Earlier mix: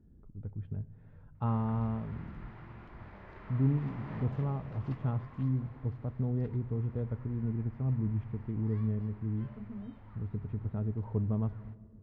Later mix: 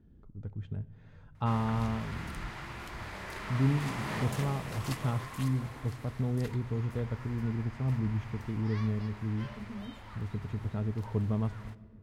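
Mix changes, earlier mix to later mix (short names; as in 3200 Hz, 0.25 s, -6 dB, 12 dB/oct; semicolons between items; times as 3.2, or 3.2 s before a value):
background +5.5 dB; master: remove tape spacing loss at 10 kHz 44 dB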